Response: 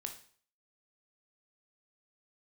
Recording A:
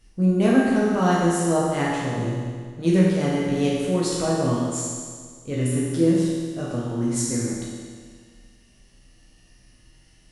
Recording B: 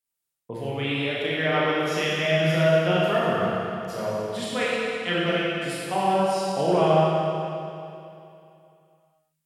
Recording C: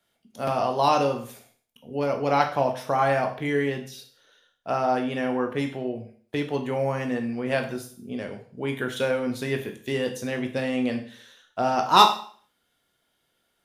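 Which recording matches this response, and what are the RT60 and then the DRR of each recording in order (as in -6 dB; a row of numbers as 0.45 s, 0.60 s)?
C; 1.8 s, 2.8 s, 0.50 s; -6.5 dB, -7.5 dB, 4.0 dB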